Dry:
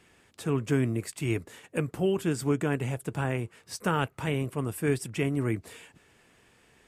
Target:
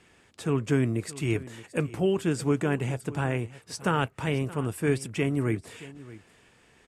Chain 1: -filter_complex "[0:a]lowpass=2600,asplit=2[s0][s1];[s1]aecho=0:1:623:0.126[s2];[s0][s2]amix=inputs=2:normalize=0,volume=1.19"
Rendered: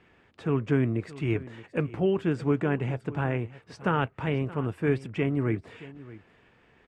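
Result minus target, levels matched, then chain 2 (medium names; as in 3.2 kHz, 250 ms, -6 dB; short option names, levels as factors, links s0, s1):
8 kHz band -19.0 dB
-filter_complex "[0:a]lowpass=10000,asplit=2[s0][s1];[s1]aecho=0:1:623:0.126[s2];[s0][s2]amix=inputs=2:normalize=0,volume=1.19"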